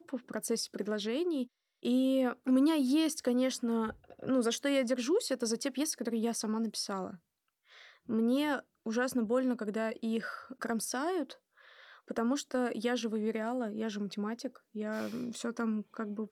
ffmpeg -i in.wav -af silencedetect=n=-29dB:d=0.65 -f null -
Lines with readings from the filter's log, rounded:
silence_start: 7.06
silence_end: 8.10 | silence_duration: 1.05
silence_start: 11.22
silence_end: 12.11 | silence_duration: 0.88